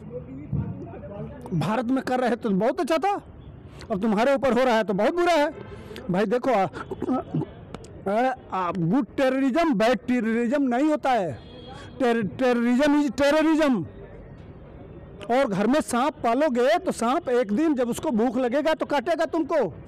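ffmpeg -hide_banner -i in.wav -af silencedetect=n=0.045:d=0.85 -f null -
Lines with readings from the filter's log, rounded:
silence_start: 13.83
silence_end: 15.22 | silence_duration: 1.38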